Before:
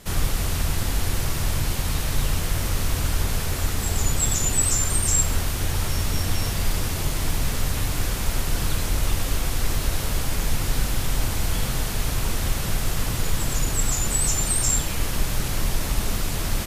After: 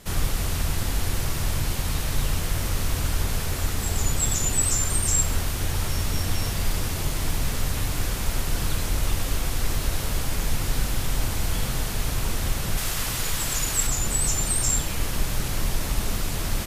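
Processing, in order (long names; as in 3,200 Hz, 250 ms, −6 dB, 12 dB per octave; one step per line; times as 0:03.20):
0:12.77–0:13.87: tilt shelving filter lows −4.5 dB, about 740 Hz
level −1.5 dB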